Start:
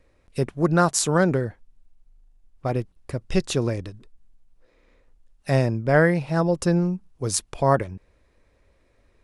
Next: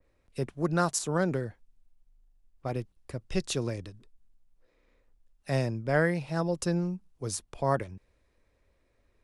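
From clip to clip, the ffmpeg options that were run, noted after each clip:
-filter_complex "[0:a]acrossover=split=140|1400[s0][s1][s2];[s2]alimiter=limit=0.168:level=0:latency=1:release=367[s3];[s0][s1][s3]amix=inputs=3:normalize=0,adynamicequalizer=threshold=0.0158:dfrequency=2400:dqfactor=0.7:tfrequency=2400:tqfactor=0.7:attack=5:release=100:ratio=0.375:range=2.5:mode=boostabove:tftype=highshelf,volume=0.398"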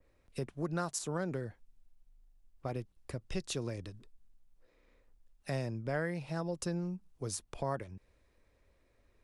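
-af "acompressor=threshold=0.0126:ratio=2"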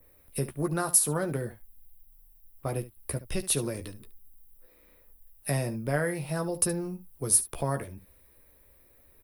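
-filter_complex "[0:a]asplit=2[s0][s1];[s1]aecho=0:1:14|72:0.473|0.178[s2];[s0][s2]amix=inputs=2:normalize=0,aexciter=amount=9.7:drive=8.9:freq=9900,volume=1.88"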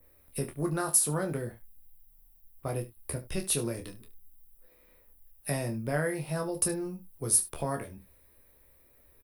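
-filter_complex "[0:a]asplit=2[s0][s1];[s1]adelay=26,volume=0.447[s2];[s0][s2]amix=inputs=2:normalize=0,volume=0.75"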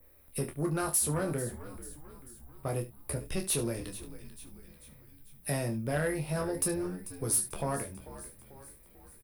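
-filter_complex "[0:a]asoftclip=type=tanh:threshold=0.0668,asplit=6[s0][s1][s2][s3][s4][s5];[s1]adelay=442,afreqshift=-72,volume=0.188[s6];[s2]adelay=884,afreqshift=-144,volume=0.1[s7];[s3]adelay=1326,afreqshift=-216,volume=0.0531[s8];[s4]adelay=1768,afreqshift=-288,volume=0.0282[s9];[s5]adelay=2210,afreqshift=-360,volume=0.0148[s10];[s0][s6][s7][s8][s9][s10]amix=inputs=6:normalize=0,volume=1.12"

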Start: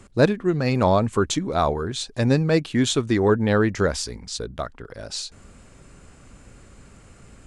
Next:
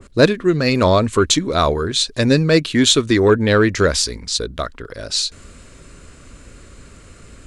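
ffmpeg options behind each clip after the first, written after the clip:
-af "equalizer=f=125:t=o:w=0.33:g=-6,equalizer=f=200:t=o:w=0.33:g=-5,equalizer=f=800:t=o:w=0.33:g=-10,equalizer=f=4000:t=o:w=0.33:g=4,acontrast=35,adynamicequalizer=threshold=0.0251:dfrequency=1700:dqfactor=0.7:tfrequency=1700:tqfactor=0.7:attack=5:release=100:ratio=0.375:range=1.5:mode=boostabove:tftype=highshelf,volume=1.19"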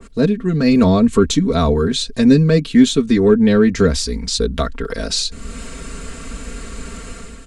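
-filter_complex "[0:a]acrossover=split=340[s0][s1];[s1]acompressor=threshold=0.0126:ratio=2[s2];[s0][s2]amix=inputs=2:normalize=0,aecho=1:1:4.4:0.8,dynaudnorm=f=100:g=7:m=2.82"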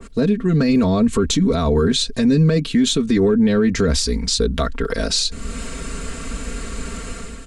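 -af "alimiter=limit=0.282:level=0:latency=1:release=41,volume=1.26"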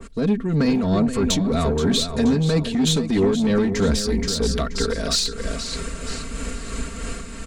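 -filter_complex "[0:a]asplit=2[s0][s1];[s1]aecho=0:1:477|954|1431|1908:0.422|0.148|0.0517|0.0181[s2];[s0][s2]amix=inputs=2:normalize=0,asoftclip=type=tanh:threshold=0.282,tremolo=f=3.1:d=0.42"

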